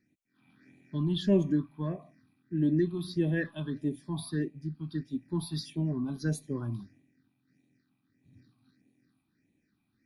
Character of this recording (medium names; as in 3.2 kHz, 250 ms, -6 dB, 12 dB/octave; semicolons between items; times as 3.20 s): phasing stages 6, 1.6 Hz, lowest notch 460–1400 Hz